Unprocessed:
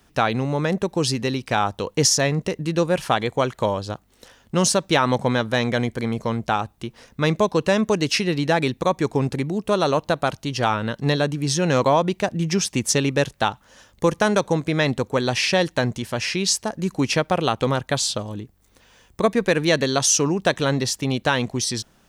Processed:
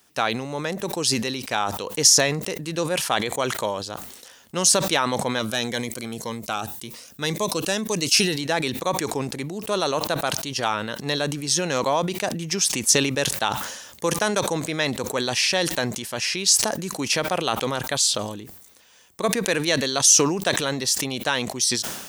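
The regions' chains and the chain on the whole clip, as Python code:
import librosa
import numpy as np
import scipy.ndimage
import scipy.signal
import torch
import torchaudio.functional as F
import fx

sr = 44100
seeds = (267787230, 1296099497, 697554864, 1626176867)

y = fx.chain(x, sr, fx.high_shelf(hz=6300.0, db=7.0),
    fx.notch_cascade(direction='rising', hz=1.9), at=(5.39, 8.41))
y = fx.highpass(y, sr, hz=310.0, slope=6)
y = fx.high_shelf(y, sr, hz=4300.0, db=11.0)
y = fx.sustainer(y, sr, db_per_s=52.0)
y = F.gain(torch.from_numpy(y), -4.0).numpy()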